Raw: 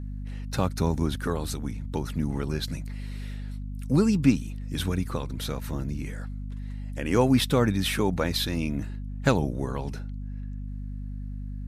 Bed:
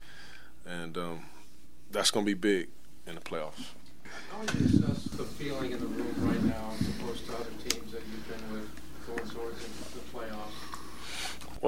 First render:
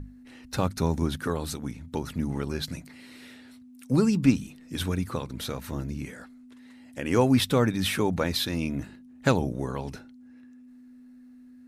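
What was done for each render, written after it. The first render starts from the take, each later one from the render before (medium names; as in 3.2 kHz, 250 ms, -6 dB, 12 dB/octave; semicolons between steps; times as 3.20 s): hum notches 50/100/150/200 Hz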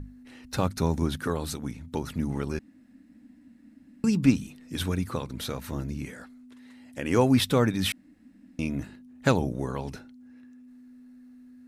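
2.59–4.04 s: room tone; 7.92–8.59 s: room tone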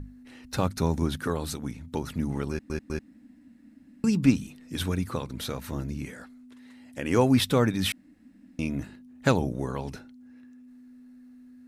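2.50 s: stutter in place 0.20 s, 3 plays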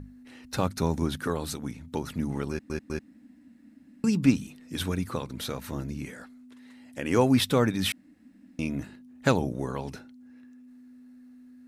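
bass shelf 65 Hz -8 dB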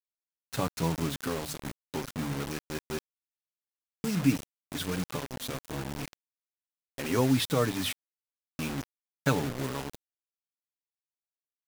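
flange 1.2 Hz, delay 6.1 ms, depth 1.8 ms, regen +25%; bit crusher 6-bit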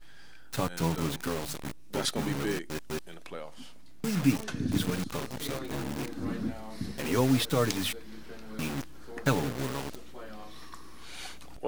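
add bed -5 dB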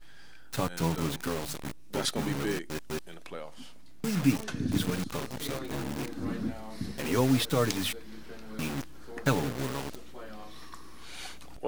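no audible change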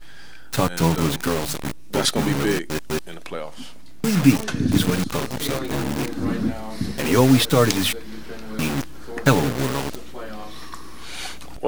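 trim +10 dB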